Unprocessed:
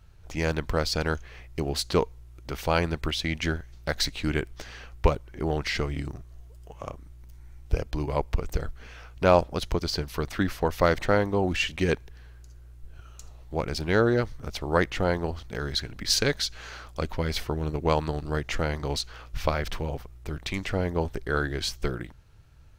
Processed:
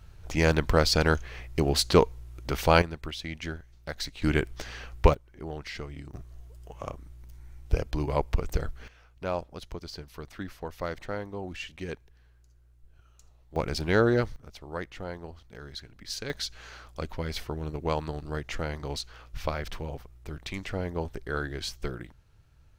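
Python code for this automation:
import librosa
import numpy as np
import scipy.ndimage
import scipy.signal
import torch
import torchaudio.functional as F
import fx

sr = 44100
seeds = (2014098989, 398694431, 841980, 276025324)

y = fx.gain(x, sr, db=fx.steps((0.0, 4.0), (2.82, -8.0), (4.22, 2.0), (5.14, -10.0), (6.14, 0.0), (8.88, -12.0), (13.56, -0.5), (14.36, -12.5), (16.3, -5.0)))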